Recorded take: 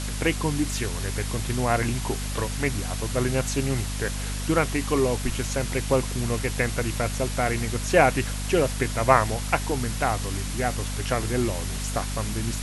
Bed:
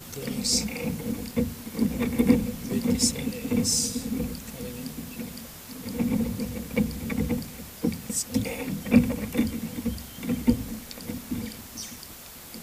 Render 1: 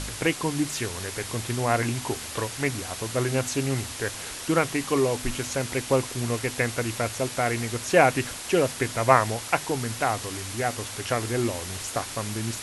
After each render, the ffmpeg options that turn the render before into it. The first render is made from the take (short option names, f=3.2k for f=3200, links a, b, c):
-af "bandreject=f=50:t=h:w=4,bandreject=f=100:t=h:w=4,bandreject=f=150:t=h:w=4,bandreject=f=200:t=h:w=4,bandreject=f=250:t=h:w=4"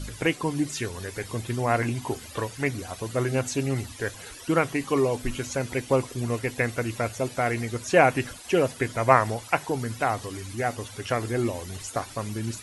-af "afftdn=nr=14:nf=-37"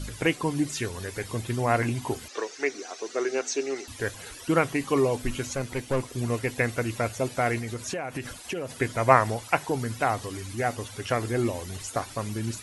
-filter_complex "[0:a]asettb=1/sr,asplit=3[a][b][c];[a]atrim=end=2.284[d];[b]atrim=start=2.28:end=3.88,asetpts=PTS-STARTPTS,afade=t=in:d=0.004:c=qsin,afade=t=out:st=1.596:d=0.004:c=qsin,highpass=f=340:w=0.5412,highpass=f=340:w=1.3066,equalizer=f=400:t=q:w=4:g=5,equalizer=f=570:t=q:w=4:g=-6,equalizer=f=980:t=q:w=4:g=-5,equalizer=f=3.1k:t=q:w=4:g=-4,equalizer=f=5.9k:t=q:w=4:g=7,lowpass=f=7k:w=0.5412,lowpass=f=7k:w=1.3066[e];[c]atrim=start=3.876[f];[d][e]acrossfade=d=0.004:c1=hsin:c2=qsin[g];[g][f]acrossfade=d=0.004:c1=qsin:c2=hsin,asettb=1/sr,asplit=3[h][i][j];[h]atrim=end=5.544[k];[i]atrim=start=5.54:end=6.14,asetpts=PTS-STARTPTS,afade=t=in:d=0.004:c=qsin,afade=t=out:st=0.596:d=0.004:c=qsin,aeval=exprs='(tanh(8.91*val(0)+0.55)-tanh(0.55))/8.91':c=same[l];[j]atrim=start=6.136[m];[k][l]acrossfade=d=0.004:c1=hsin:c2=qsin[n];[n][m]acrossfade=d=0.004:c1=qsin:c2=hsin,asettb=1/sr,asplit=3[o][p][q];[o]atrim=end=7.584[r];[p]atrim=start=7.58:end=8.78,asetpts=PTS-STARTPTS,afade=t=in:d=0.004:c=qsin,afade=t=out:st=1.196:d=0.004:c=qsin,acompressor=threshold=-28dB:ratio=12:attack=3.2:release=140:knee=1:detection=peak[s];[q]atrim=start=8.776[t];[r][s]acrossfade=d=0.004:c1=hsin:c2=qsin[u];[u][t]acrossfade=d=0.004:c1=qsin:c2=hsin"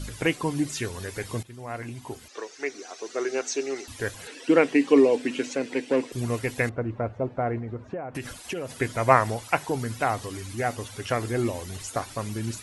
-filter_complex "[0:a]asettb=1/sr,asplit=3[a][b][c];[a]atrim=end=4.274[d];[b]atrim=start=4.27:end=6.12,asetpts=PTS-STARTPTS,afade=t=in:d=0.004:c=qsin,afade=t=out:st=1.846:d=0.004:c=qsin,highpass=f=200:w=0.5412,highpass=f=200:w=1.3066,equalizer=f=280:t=q:w=4:g=9,equalizer=f=460:t=q:w=4:g=8,equalizer=f=1.2k:t=q:w=4:g=-6,equalizer=f=1.8k:t=q:w=4:g=4,equalizer=f=2.6k:t=q:w=4:g=5,equalizer=f=6.6k:t=q:w=4:g=-4,lowpass=f=8k:w=0.5412,lowpass=f=8k:w=1.3066[e];[c]atrim=start=6.116[f];[d][e]acrossfade=d=0.004:c1=hsin:c2=qsin[g];[g][f]acrossfade=d=0.004:c1=qsin:c2=hsin,asettb=1/sr,asplit=3[h][i][j];[h]atrim=end=6.694[k];[i]atrim=start=6.69:end=8.15,asetpts=PTS-STARTPTS,afade=t=in:d=0.004:c=qsin,afade=t=out:st=1.456:d=0.004:c=qsin,lowpass=1k[l];[j]atrim=start=8.146[m];[k][l]acrossfade=d=0.004:c1=hsin:c2=qsin[n];[n][m]acrossfade=d=0.004:c1=qsin:c2=hsin,asplit=2[o][p];[o]atrim=end=1.43,asetpts=PTS-STARTPTS,afade=t=out:st=1.426:d=0.004:c=hsin:silence=0.141254[q];[p]atrim=start=1.43,asetpts=PTS-STARTPTS,afade=t=in:d=1.96:silence=0.141254[r];[q][r]concat=n=2:v=0:a=1"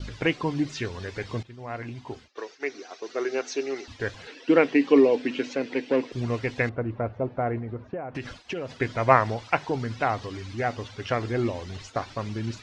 -af "lowpass=f=5.2k:w=0.5412,lowpass=f=5.2k:w=1.3066,agate=range=-33dB:threshold=-40dB:ratio=3:detection=peak"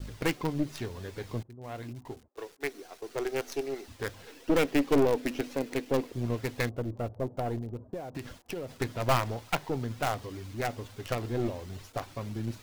-filter_complex "[0:a]aeval=exprs='(tanh(8.91*val(0)+0.7)-tanh(0.7))/8.91':c=same,acrossover=split=900[a][b];[b]acrusher=bits=6:dc=4:mix=0:aa=0.000001[c];[a][c]amix=inputs=2:normalize=0"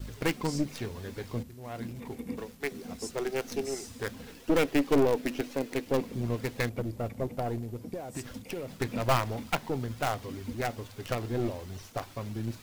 -filter_complex "[1:a]volume=-18dB[a];[0:a][a]amix=inputs=2:normalize=0"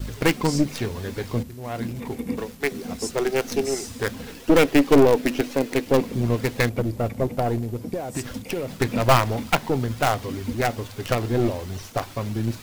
-af "volume=9dB"